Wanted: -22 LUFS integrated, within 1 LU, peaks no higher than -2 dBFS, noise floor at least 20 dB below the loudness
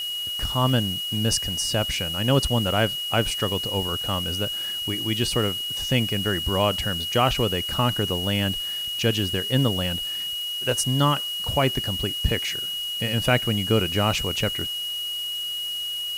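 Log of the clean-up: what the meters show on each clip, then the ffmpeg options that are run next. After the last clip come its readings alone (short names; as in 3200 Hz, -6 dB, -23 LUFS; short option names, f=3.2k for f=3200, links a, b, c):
steady tone 2900 Hz; tone level -27 dBFS; noise floor -30 dBFS; noise floor target -44 dBFS; loudness -23.5 LUFS; peak -7.0 dBFS; loudness target -22.0 LUFS
-> -af "bandreject=f=2.9k:w=30"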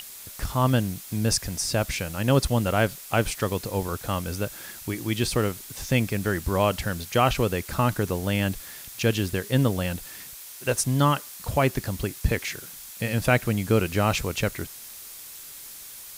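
steady tone none; noise floor -42 dBFS; noise floor target -46 dBFS
-> -af "afftdn=nr=6:nf=-42"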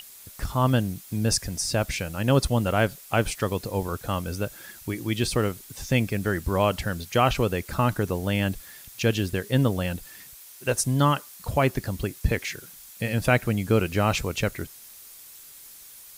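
noise floor -47 dBFS; loudness -25.5 LUFS; peak -7.5 dBFS; loudness target -22.0 LUFS
-> -af "volume=3.5dB"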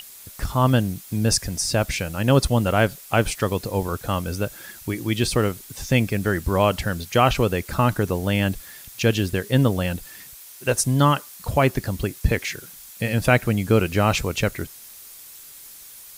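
loudness -22.0 LUFS; peak -4.0 dBFS; noise floor -43 dBFS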